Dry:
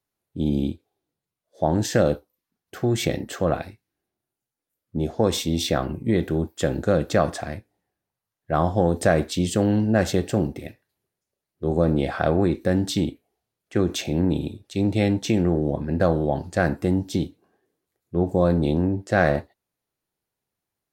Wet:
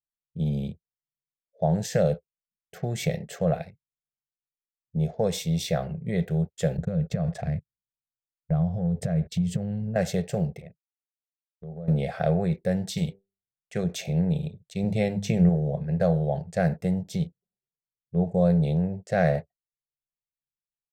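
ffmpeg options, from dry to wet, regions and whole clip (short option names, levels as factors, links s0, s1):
-filter_complex "[0:a]asettb=1/sr,asplit=3[s0][s1][s2];[s0]atrim=end=6.774[s3];[s1]atrim=start=6.77:end=9.96,asetpts=PTS-STARTPTS,afade=t=in:d=0.004:c=qsin,afade=t=out:st=3.186:d=0.004:c=qsin,agate=range=0.224:threshold=0.0178:ratio=16:release=100:detection=peak,bass=f=250:g=13,treble=f=4000:g=-5,acompressor=threshold=0.112:ratio=12:attack=3.2:release=140:knee=1:detection=peak[s4];[s2]atrim=start=9.956[s5];[s3][s4]acrossfade=d=0.004:c1=hsin:c2=qsin[s6];[s6][s5]acrossfade=d=0.004:c1=qsin:c2=hsin,asettb=1/sr,asplit=3[s7][s8][s9];[s7]atrim=end=10.624[s10];[s8]atrim=start=10.62:end=11.88,asetpts=PTS-STARTPTS,afade=t=in:d=0.004:c=qsin,afade=t=out:st=1.256:d=0.004:c=qsin,agate=range=0.0224:threshold=0.00708:ratio=3:release=100:detection=peak,highshelf=f=2800:g=-9,acompressor=threshold=0.0178:ratio=4:attack=3.2:release=140:knee=1:detection=peak[s11];[s9]atrim=start=11.876[s12];[s10][s11]acrossfade=d=0.004:c1=hsin:c2=qsin[s13];[s13][s12]acrossfade=d=0.004:c1=qsin:c2=hsin,asettb=1/sr,asplit=3[s14][s15][s16];[s14]atrim=end=12.974[s17];[s15]atrim=start=12.97:end=13.84,asetpts=PTS-STARTPTS,afade=t=in:d=0.004:c=qsin,afade=t=out:st=0.866:d=0.004:c=qsin,highshelf=f=2300:g=6.5,bandreject=f=97.87:t=h:w=4,bandreject=f=195.74:t=h:w=4,bandreject=f=293.61:t=h:w=4,bandreject=f=391.48:t=h:w=4,bandreject=f=489.35:t=h:w=4,bandreject=f=587.22:t=h:w=4,bandreject=f=685.09:t=h:w=4,bandreject=f=782.96:t=h:w=4,bandreject=f=880.83:t=h:w=4,bandreject=f=978.7:t=h:w=4,bandreject=f=1076.57:t=h:w=4,bandreject=f=1174.44:t=h:w=4,bandreject=f=1272.31:t=h:w=4[s18];[s16]atrim=start=13.836[s19];[s17][s18]acrossfade=d=0.004:c1=hsin:c2=qsin[s20];[s20][s19]acrossfade=d=0.004:c1=qsin:c2=hsin,asettb=1/sr,asplit=3[s21][s22][s23];[s21]atrim=end=14.834[s24];[s22]atrim=start=14.83:end=15.49,asetpts=PTS-STARTPTS,afade=t=in:d=0.004:c=qsin,afade=t=out:st=0.656:d=0.004:c=qsin,lowshelf=f=330:g=7,bandreject=f=50:t=h:w=6,bandreject=f=100:t=h:w=6,bandreject=f=150:t=h:w=6,bandreject=f=200:t=h:w=6[s25];[s23]atrim=start=15.486[s26];[s24][s25]acrossfade=d=0.004:c1=hsin:c2=qsin[s27];[s27][s26]acrossfade=d=0.004:c1=qsin:c2=hsin,adynamicequalizer=threshold=0.0126:dfrequency=250:dqfactor=2.2:tfrequency=250:tqfactor=2.2:attack=5:release=100:ratio=0.375:range=3:mode=cutabove:tftype=bell,anlmdn=0.0251,firequalizer=gain_entry='entry(110,0);entry(160,14);entry(300,-16);entry(430,5);entry(680,6);entry(1000,-7);entry(2100,5);entry(3000,0);entry(5900,3)':delay=0.05:min_phase=1,volume=0.398"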